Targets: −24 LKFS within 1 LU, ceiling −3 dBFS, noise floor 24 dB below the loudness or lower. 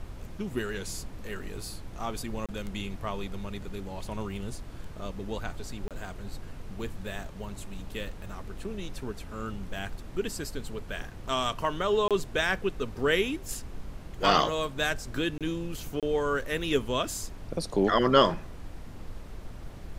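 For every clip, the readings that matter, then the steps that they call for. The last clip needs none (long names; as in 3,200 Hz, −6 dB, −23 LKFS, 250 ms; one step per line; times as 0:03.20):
number of dropouts 5; longest dropout 27 ms; background noise floor −43 dBFS; target noise floor −55 dBFS; integrated loudness −31.0 LKFS; sample peak −7.5 dBFS; target loudness −24.0 LKFS
→ repair the gap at 0:02.46/0:05.88/0:12.08/0:15.38/0:16.00, 27 ms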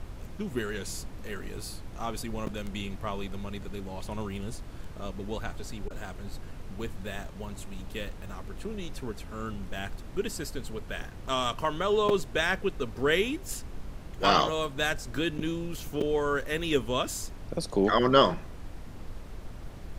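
number of dropouts 0; background noise floor −43 dBFS; target noise floor −55 dBFS
→ noise reduction from a noise print 12 dB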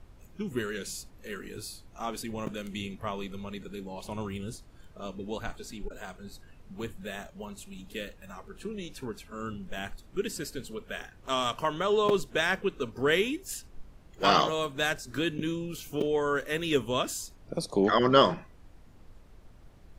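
background noise floor −54 dBFS; target noise floor −55 dBFS
→ noise reduction from a noise print 6 dB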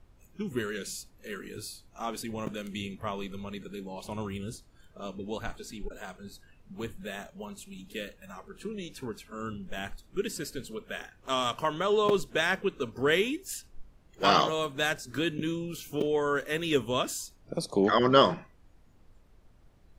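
background noise floor −60 dBFS; integrated loudness −31.0 LKFS; sample peak −7.5 dBFS; target loudness −24.0 LKFS
→ level +7 dB
brickwall limiter −3 dBFS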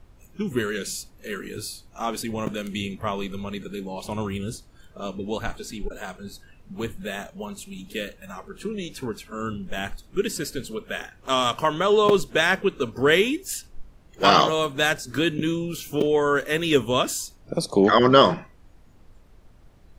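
integrated loudness −24.0 LKFS; sample peak −3.0 dBFS; background noise floor −53 dBFS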